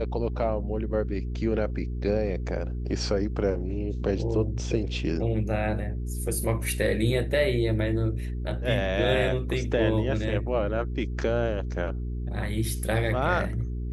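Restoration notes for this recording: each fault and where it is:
hum 60 Hz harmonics 7 -31 dBFS

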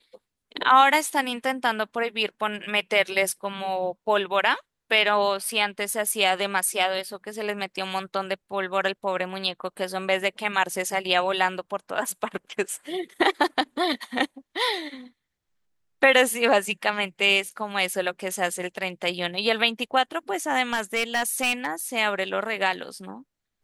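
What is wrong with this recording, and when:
20.73–21.67 clipped -18 dBFS

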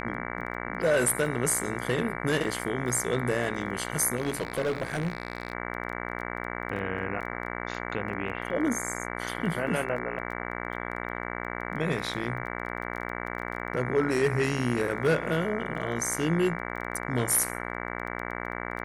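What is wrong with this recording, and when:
buzz 60 Hz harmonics 38 -35 dBFS
crackle 13/s -36 dBFS
4.17–5.53 clipped -24 dBFS

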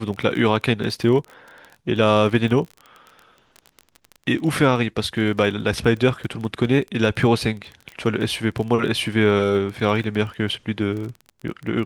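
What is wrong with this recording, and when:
crackle 23/s -28 dBFS

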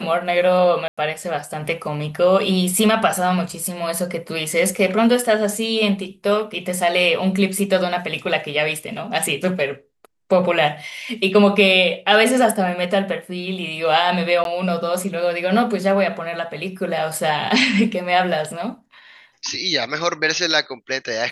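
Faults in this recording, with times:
0.88–0.97 gap 95 ms
14.44–14.45 gap 12 ms

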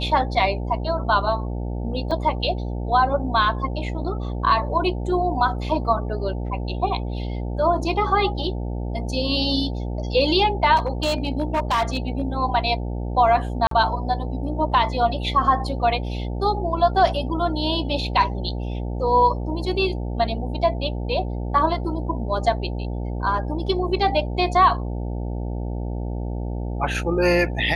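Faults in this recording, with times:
buzz 60 Hz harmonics 15 -27 dBFS
2.11 gap 4.8 ms
10.76–12.22 clipped -17 dBFS
13.67–13.71 gap 43 ms

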